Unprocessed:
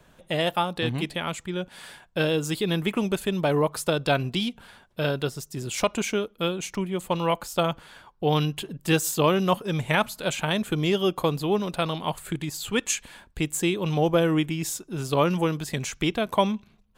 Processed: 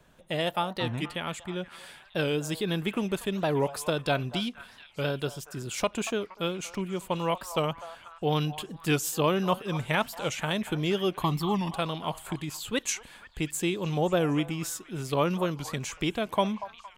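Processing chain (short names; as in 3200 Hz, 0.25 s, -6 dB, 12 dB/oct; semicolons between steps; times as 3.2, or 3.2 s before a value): 11.2–11.71 comb 1 ms, depth 93%; delay with a stepping band-pass 0.237 s, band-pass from 890 Hz, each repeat 0.7 oct, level -10.5 dB; record warp 45 rpm, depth 160 cents; gain -4 dB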